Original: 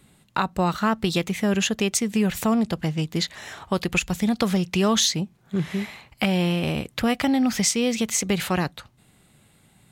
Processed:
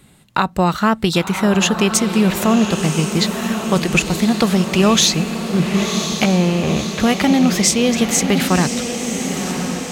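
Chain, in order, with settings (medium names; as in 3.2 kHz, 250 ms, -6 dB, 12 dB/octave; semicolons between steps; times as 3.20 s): 6.24–7.00 s: low-pass 2.1 kHz; echo that smears into a reverb 1041 ms, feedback 63%, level -7 dB; trim +6.5 dB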